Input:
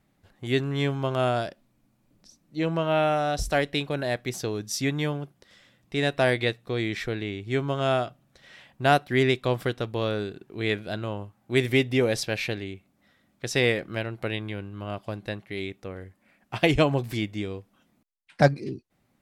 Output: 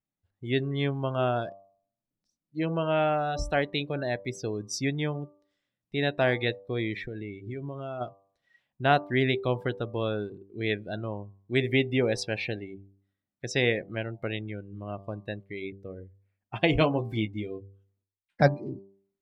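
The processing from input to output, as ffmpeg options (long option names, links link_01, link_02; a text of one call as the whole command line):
ffmpeg -i in.wav -filter_complex "[0:a]asplit=3[link_01][link_02][link_03];[link_01]afade=type=out:start_time=7:duration=0.02[link_04];[link_02]acompressor=threshold=-29dB:ratio=12:attack=3.2:release=140:knee=1:detection=peak,afade=type=in:start_time=7:duration=0.02,afade=type=out:start_time=8:duration=0.02[link_05];[link_03]afade=type=in:start_time=8:duration=0.02[link_06];[link_04][link_05][link_06]amix=inputs=3:normalize=0,asettb=1/sr,asplit=3[link_07][link_08][link_09];[link_07]atrim=end=16.714[link_10];[link_08]atrim=start=16.71:end=18.42,asetpts=PTS-STARTPTS,afade=type=in:duration=0.004:curve=qsin,afade=type=out:start_time=1.706:duration=0.004:curve=qsin,asplit=2[link_11][link_12];[link_12]adelay=18,volume=-6.5dB[link_13];[link_11][link_13]amix=inputs=2:normalize=0,atrim=end_sample=75411[link_14];[link_09]atrim=start=18.416[link_15];[link_10][link_14]acrossfade=duration=0.004:curve1=hsin:curve2=qsin[link_16];[link_16][link_15]acrossfade=duration=0.004:curve1=qsin:curve2=hsin,afftdn=noise_reduction=23:noise_floor=-35,bandreject=frequency=98.06:width_type=h:width=4,bandreject=frequency=196.12:width_type=h:width=4,bandreject=frequency=294.18:width_type=h:width=4,bandreject=frequency=392.24:width_type=h:width=4,bandreject=frequency=490.3:width_type=h:width=4,bandreject=frequency=588.36:width_type=h:width=4,bandreject=frequency=686.42:width_type=h:width=4,bandreject=frequency=784.48:width_type=h:width=4,bandreject=frequency=882.54:width_type=h:width=4,bandreject=frequency=980.6:width_type=h:width=4,bandreject=frequency=1078.66:width_type=h:width=4,bandreject=frequency=1176.72:width_type=h:width=4,volume=-2dB" out.wav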